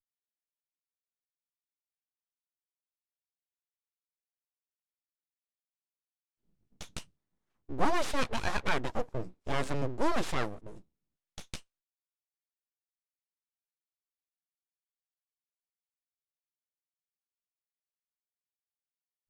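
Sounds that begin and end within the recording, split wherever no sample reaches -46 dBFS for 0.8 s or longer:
6.81–11.59

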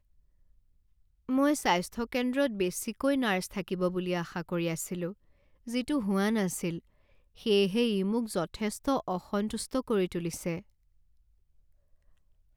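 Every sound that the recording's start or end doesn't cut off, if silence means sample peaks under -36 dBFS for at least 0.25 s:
1.29–5.11
5.68–6.79
7.46–10.59

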